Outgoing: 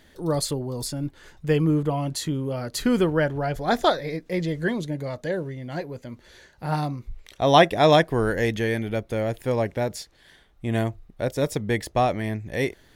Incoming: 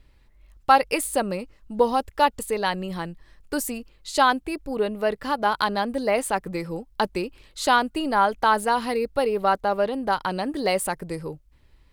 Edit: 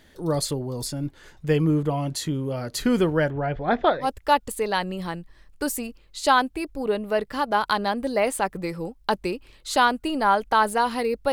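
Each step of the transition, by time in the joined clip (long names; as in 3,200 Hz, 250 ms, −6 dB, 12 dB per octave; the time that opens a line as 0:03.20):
outgoing
0:03.30–0:04.08: low-pass filter 3,000 Hz 24 dB per octave
0:04.04: continue with incoming from 0:01.95, crossfade 0.08 s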